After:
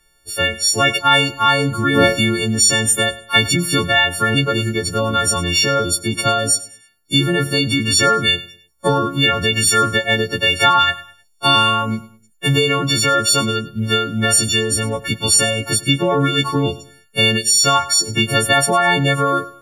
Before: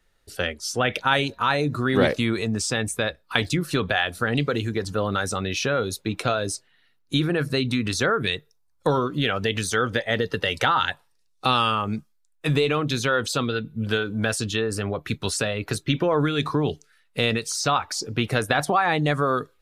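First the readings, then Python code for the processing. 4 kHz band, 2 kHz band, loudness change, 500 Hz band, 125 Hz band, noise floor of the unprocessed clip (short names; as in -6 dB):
+12.0 dB, +8.0 dB, +8.5 dB, +4.5 dB, +6.0 dB, -65 dBFS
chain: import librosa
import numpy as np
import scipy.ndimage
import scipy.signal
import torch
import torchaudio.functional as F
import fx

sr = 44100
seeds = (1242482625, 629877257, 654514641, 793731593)

p1 = fx.freq_snap(x, sr, grid_st=4)
p2 = fx.low_shelf(p1, sr, hz=250.0, db=5.0)
p3 = p2 + fx.echo_feedback(p2, sr, ms=103, feedback_pct=33, wet_db=-17.5, dry=0)
p4 = fx.spec_erase(p3, sr, start_s=17.38, length_s=0.23, low_hz=690.0, high_hz=1400.0)
y = F.gain(torch.from_numpy(p4), 3.0).numpy()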